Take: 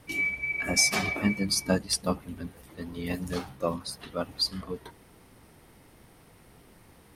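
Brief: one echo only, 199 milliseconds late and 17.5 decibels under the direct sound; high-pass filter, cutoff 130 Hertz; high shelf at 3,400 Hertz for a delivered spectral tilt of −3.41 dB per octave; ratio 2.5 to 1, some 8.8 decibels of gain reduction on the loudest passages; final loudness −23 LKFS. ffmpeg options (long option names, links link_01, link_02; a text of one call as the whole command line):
ffmpeg -i in.wav -af "highpass=130,highshelf=frequency=3400:gain=7.5,acompressor=threshold=-26dB:ratio=2.5,aecho=1:1:199:0.133,volume=6.5dB" out.wav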